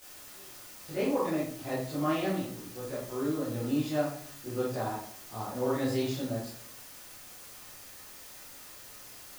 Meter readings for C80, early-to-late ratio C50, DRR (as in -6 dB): 7.5 dB, 2.0 dB, -11.0 dB